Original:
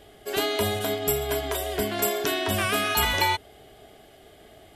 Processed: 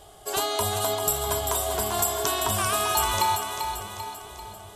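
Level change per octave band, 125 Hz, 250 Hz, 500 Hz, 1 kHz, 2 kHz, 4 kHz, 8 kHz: -0.5, -6.5, -2.0, +3.5, -5.0, -1.0, +6.5 dB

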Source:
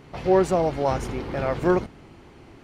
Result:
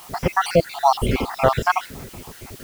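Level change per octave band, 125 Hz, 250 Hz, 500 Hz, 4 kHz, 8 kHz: +3.5, -2.0, 0.0, +11.0, +8.0 dB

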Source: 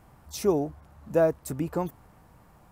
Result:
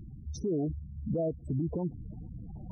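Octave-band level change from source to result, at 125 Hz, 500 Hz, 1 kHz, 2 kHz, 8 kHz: +2.0 dB, -9.0 dB, -14.0 dB, under -40 dB, under -10 dB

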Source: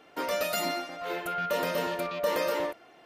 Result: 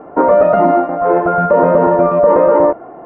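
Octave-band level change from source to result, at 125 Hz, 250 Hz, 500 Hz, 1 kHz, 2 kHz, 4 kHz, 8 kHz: +22.0 dB, +21.5 dB, +21.0 dB, +19.5 dB, +8.5 dB, under -15 dB, under -40 dB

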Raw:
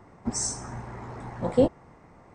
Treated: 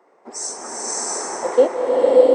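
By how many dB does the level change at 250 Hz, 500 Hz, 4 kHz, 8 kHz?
+0.5, +14.0, +8.0, +8.5 dB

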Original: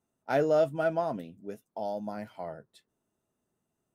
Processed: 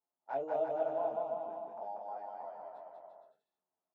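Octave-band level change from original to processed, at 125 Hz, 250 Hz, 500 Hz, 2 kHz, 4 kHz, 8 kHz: under -20 dB, -15.0 dB, -7.0 dB, -15.0 dB, under -15 dB, n/a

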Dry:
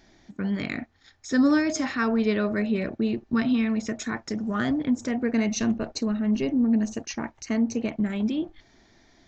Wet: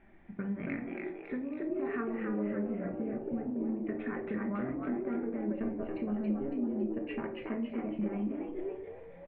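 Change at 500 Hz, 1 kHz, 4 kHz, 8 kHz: -6.0 dB, -9.5 dB, under -20 dB, n/a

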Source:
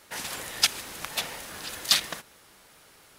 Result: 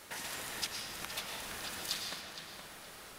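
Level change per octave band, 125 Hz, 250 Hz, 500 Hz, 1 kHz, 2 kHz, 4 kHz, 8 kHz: -5.5, -5.5, -6.0, -7.0, -8.5, -12.0, -10.5 dB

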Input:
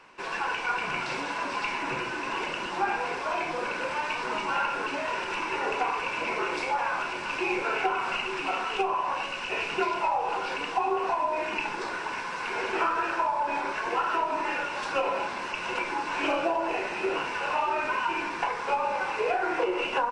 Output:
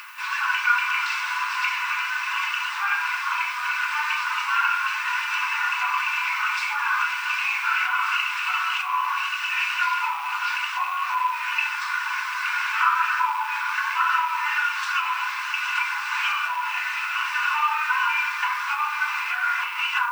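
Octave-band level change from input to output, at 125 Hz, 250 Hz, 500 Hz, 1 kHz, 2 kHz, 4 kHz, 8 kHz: under -40 dB, under -40 dB, under -30 dB, +3.5 dB, +8.5 dB, +6.5 dB, +6.5 dB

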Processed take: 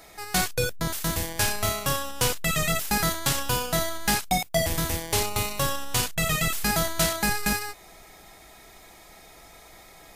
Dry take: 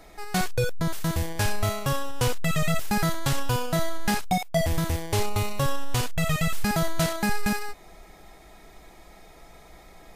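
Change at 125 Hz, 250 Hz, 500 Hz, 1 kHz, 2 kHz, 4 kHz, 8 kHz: -4.0, -3.0, -0.5, +1.0, +3.0, +5.0, +7.0 dB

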